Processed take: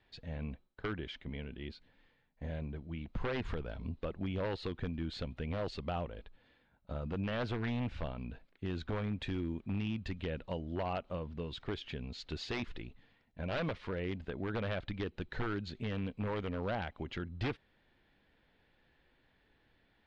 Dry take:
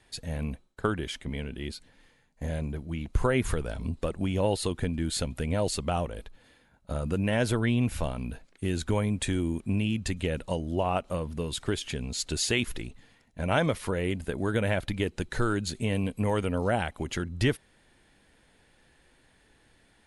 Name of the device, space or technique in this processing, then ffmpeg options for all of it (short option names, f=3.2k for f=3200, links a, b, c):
synthesiser wavefolder: -af "aeval=exprs='0.0944*(abs(mod(val(0)/0.0944+3,4)-2)-1)':c=same,lowpass=f=4.1k:w=0.5412,lowpass=f=4.1k:w=1.3066,volume=-8dB"